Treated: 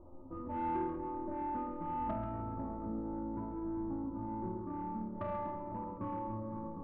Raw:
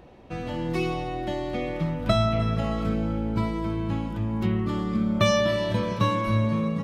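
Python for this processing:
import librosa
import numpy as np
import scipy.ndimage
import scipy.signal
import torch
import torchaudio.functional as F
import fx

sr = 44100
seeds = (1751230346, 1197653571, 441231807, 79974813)

y = x + 0.87 * np.pad(x, (int(3.4 * sr / 1000.0), 0))[:len(x)]
y = fx.dynamic_eq(y, sr, hz=920.0, q=1.0, threshold_db=-32.0, ratio=4.0, max_db=-3)
y = fx.rider(y, sr, range_db=3, speed_s=2.0)
y = fx.dmg_noise_colour(y, sr, seeds[0], colour='brown', level_db=-41.0)
y = scipy.signal.sosfilt(scipy.signal.cheby1(6, 6, 1300.0, 'lowpass', fs=sr, output='sos'), y)
y = fx.comb_fb(y, sr, f0_hz=88.0, decay_s=0.77, harmonics='all', damping=0.0, mix_pct=90)
y = 10.0 ** (-33.5 / 20.0) * np.tanh(y / 10.0 ** (-33.5 / 20.0))
y = y + 10.0 ** (-8.0 / 20.0) * np.pad(y, (int(134 * sr / 1000.0), 0))[:len(y)]
y = y * librosa.db_to_amplitude(3.0)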